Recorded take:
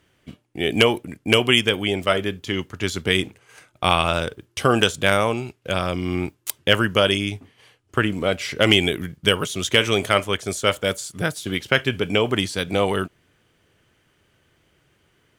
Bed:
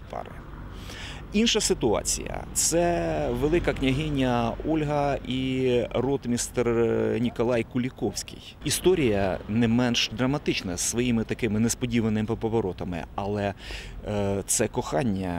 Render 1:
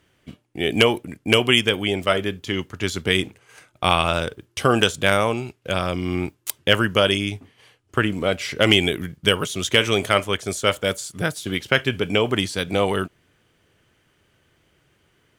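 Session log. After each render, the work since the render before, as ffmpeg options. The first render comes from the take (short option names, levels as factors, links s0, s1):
-af anull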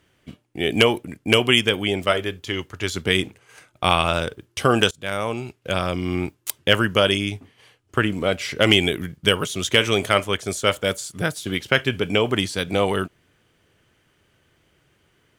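-filter_complex "[0:a]asettb=1/sr,asplit=3[s0][s1][s2];[s0]atrim=end=2.114[s3];[s1]atrim=start=2.11:end=2.95,asetpts=PTS-STARTPTS,afade=t=in:d=0.004:c=qsin,afade=t=out:st=0.836:d=0.004:c=qsin,equalizer=f=200:w=1.5:g=-7[s4];[s2]atrim=start=2.946[s5];[s3][s4]acrossfade=d=0.004:c1=hsin:c2=qsin[s6];[s6][s5]acrossfade=d=0.004:c1=qsin:c2=hsin,asplit=2[s7][s8];[s7]atrim=end=4.91,asetpts=PTS-STARTPTS,afade=t=out:st=4.906:d=0.004:c=hsin:silence=0.0749894[s9];[s8]atrim=start=4.91,asetpts=PTS-STARTPTS,afade=t=in:d=0.63:silence=0.0749894[s10];[s9][s10]concat=n=2:v=0:a=1"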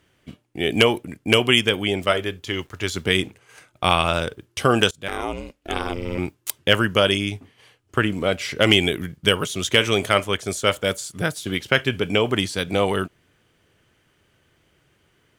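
-filter_complex "[0:a]asettb=1/sr,asplit=3[s0][s1][s2];[s0]atrim=end=2.504[s3];[s1]atrim=start=2.5:end=3.14,asetpts=PTS-STARTPTS,afade=t=in:d=0.004:c=qsin,afade=t=out:st=0.636:d=0.004:c=qsin,acrusher=bits=8:mix=0:aa=0.5[s4];[s2]atrim=start=3.136[s5];[s3][s4]acrossfade=d=0.004:c1=hsin:c2=qsin[s6];[s6][s5]acrossfade=d=0.004:c1=qsin:c2=hsin,asettb=1/sr,asplit=3[s7][s8][s9];[s7]atrim=end=5.084[s10];[s8]atrim=start=5.08:end=6.18,asetpts=PTS-STARTPTS,afade=t=in:d=0.004:c=qsin,afade=t=out:st=1.096:d=0.004:c=qsin,aeval=exprs='val(0)*sin(2*PI*170*n/s)':c=same[s11];[s9]atrim=start=6.176[s12];[s10][s11]acrossfade=d=0.004:c1=hsin:c2=qsin[s13];[s13][s12]acrossfade=d=0.004:c1=qsin:c2=hsin"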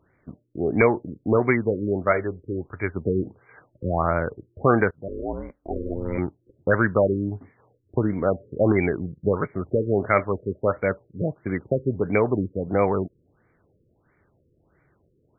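-af "volume=1.78,asoftclip=hard,volume=0.562,afftfilt=real='re*lt(b*sr/1024,540*pow(2400/540,0.5+0.5*sin(2*PI*1.5*pts/sr)))':imag='im*lt(b*sr/1024,540*pow(2400/540,0.5+0.5*sin(2*PI*1.5*pts/sr)))':win_size=1024:overlap=0.75"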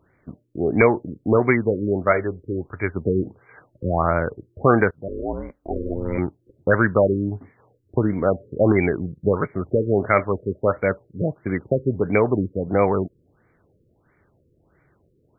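-af "volume=1.33,alimiter=limit=0.708:level=0:latency=1"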